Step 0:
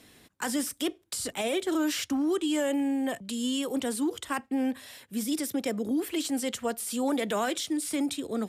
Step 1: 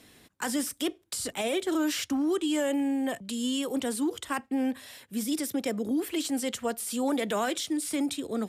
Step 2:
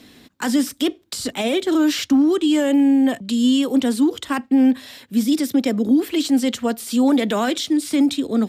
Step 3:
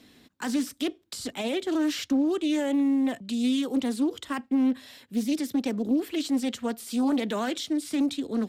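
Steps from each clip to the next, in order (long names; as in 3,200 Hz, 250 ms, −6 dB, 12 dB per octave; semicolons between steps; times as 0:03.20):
no processing that can be heard
graphic EQ with 15 bands 250 Hz +8 dB, 4,000 Hz +4 dB, 10,000 Hz −7 dB; level +6.5 dB
highs frequency-modulated by the lows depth 0.24 ms; level −8.5 dB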